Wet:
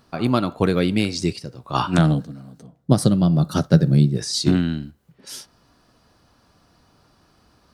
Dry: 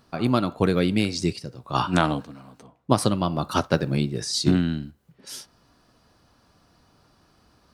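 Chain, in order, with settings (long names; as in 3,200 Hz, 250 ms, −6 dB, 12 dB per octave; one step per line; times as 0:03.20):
0:01.98–0:04.17: graphic EQ with 15 bands 160 Hz +11 dB, 1,000 Hz −11 dB, 2,500 Hz −10 dB
level +2 dB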